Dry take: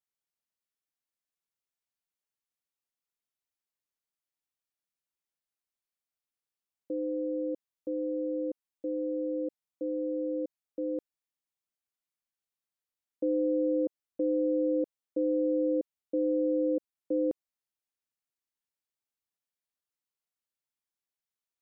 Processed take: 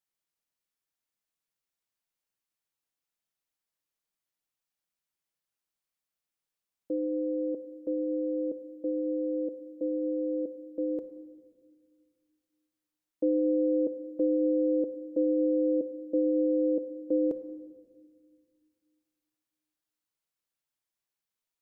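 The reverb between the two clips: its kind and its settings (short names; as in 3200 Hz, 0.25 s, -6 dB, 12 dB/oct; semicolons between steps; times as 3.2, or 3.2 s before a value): shoebox room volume 2000 m³, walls mixed, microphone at 0.6 m; gain +2 dB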